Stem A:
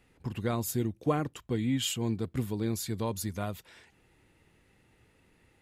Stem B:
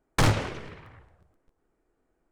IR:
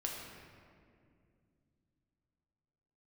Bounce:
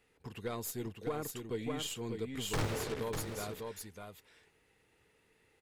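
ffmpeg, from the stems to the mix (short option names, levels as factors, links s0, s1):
-filter_complex "[0:a]lowshelf=f=470:g=-9,aeval=exprs='(tanh(11.2*val(0)+0.8)-tanh(0.8))/11.2':c=same,volume=1.19,asplit=2[s0][s1];[s1]volume=0.531[s2];[1:a]alimiter=limit=0.0794:level=0:latency=1:release=133,acrusher=bits=5:mix=0:aa=0.5,adelay=2350,volume=0.794,asplit=2[s3][s4];[s4]volume=0.251[s5];[s2][s5]amix=inputs=2:normalize=0,aecho=0:1:597:1[s6];[s0][s3][s6]amix=inputs=3:normalize=0,equalizer=f=440:t=o:w=0.24:g=10,alimiter=level_in=1.41:limit=0.0631:level=0:latency=1:release=105,volume=0.708"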